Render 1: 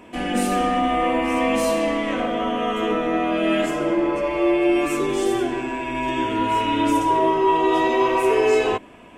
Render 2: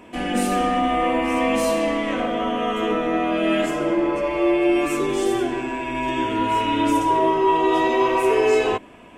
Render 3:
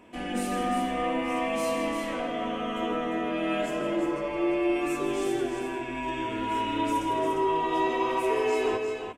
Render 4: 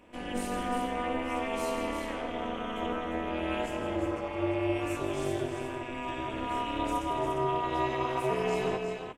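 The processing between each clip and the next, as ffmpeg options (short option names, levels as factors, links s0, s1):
-af anull
-af "aecho=1:1:161|350:0.299|0.473,volume=0.376"
-af "tremolo=f=250:d=0.889"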